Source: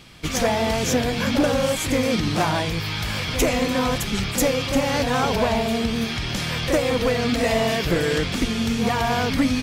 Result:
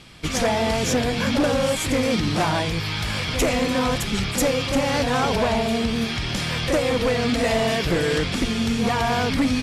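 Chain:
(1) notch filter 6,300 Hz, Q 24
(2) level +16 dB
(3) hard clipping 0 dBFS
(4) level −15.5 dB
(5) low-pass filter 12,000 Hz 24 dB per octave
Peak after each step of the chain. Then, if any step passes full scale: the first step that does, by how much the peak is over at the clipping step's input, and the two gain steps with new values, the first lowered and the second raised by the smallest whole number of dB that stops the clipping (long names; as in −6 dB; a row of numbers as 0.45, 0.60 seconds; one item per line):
−11.5, +4.5, 0.0, −15.5, −12.5 dBFS
step 2, 4.5 dB
step 2 +11 dB, step 4 −10.5 dB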